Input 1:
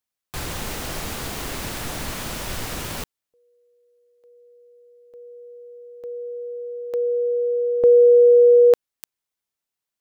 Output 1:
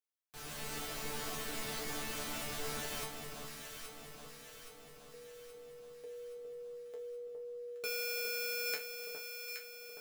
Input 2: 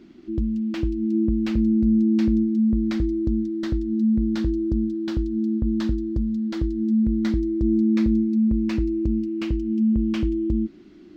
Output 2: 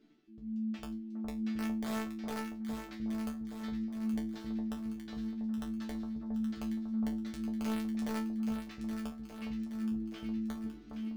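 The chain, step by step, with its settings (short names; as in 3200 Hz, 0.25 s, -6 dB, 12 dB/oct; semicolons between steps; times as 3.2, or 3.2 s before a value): wrapped overs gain 13 dB; reverse; compressor 4:1, threshold -34 dBFS; reverse; low shelf 290 Hz -5.5 dB; resonator bank D3 fifth, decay 0.24 s; AGC gain up to 8.5 dB; Butterworth band-stop 960 Hz, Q 6.7; on a send: echo with dull and thin repeats by turns 0.411 s, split 1200 Hz, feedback 73%, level -4 dB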